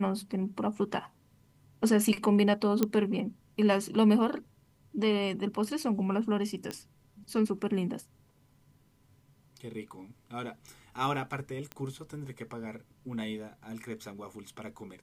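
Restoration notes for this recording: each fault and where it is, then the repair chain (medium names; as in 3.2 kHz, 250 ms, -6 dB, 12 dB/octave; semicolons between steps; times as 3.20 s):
2.83 s: pop -12 dBFS
6.71 s: pop -21 dBFS
11.72 s: pop -23 dBFS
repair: de-click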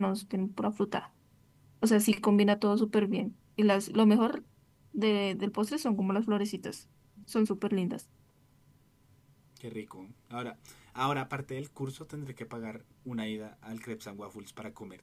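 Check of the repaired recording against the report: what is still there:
nothing left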